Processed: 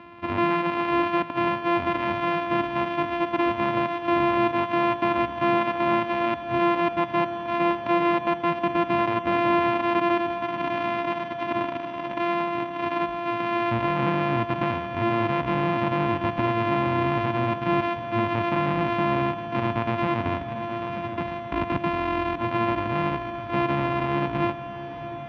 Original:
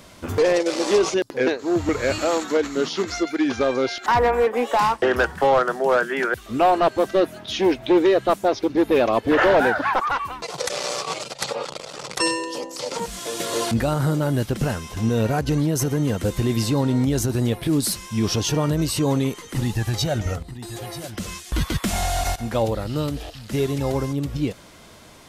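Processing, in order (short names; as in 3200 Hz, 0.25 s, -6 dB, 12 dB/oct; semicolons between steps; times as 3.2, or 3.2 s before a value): sample sorter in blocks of 128 samples; limiter -17.5 dBFS, peak gain reduction 8.5 dB; speaker cabinet 110–2900 Hz, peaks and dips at 290 Hz +5 dB, 420 Hz -4 dB, 1000 Hz +8 dB, 2500 Hz +5 dB; on a send: diffused feedback echo 0.675 s, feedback 76%, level -13 dB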